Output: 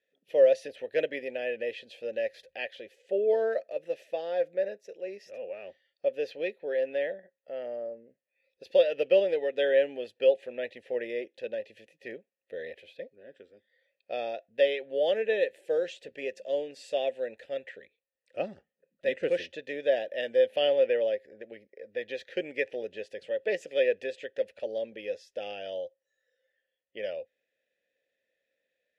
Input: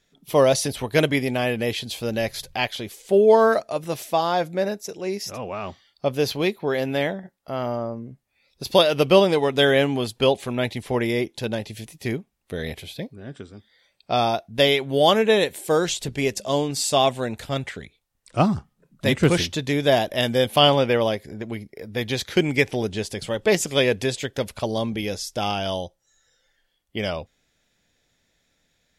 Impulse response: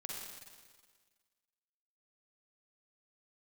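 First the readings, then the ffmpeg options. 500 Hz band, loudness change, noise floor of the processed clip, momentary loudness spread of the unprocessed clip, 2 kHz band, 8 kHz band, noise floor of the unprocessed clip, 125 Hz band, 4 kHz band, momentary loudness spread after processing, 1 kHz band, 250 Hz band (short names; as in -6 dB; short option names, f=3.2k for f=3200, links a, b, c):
-5.5 dB, -8.0 dB, -85 dBFS, 15 LU, -10.5 dB, under -25 dB, -71 dBFS, under -30 dB, -16.5 dB, 18 LU, -18.5 dB, -19.5 dB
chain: -filter_complex "[0:a]asplit=3[a][b][c];[a]bandpass=f=530:t=q:w=8,volume=0dB[d];[b]bandpass=f=1.84k:t=q:w=8,volume=-6dB[e];[c]bandpass=f=2.48k:t=q:w=8,volume=-9dB[f];[d][e][f]amix=inputs=3:normalize=0,equalizer=f=130:w=3.7:g=-9"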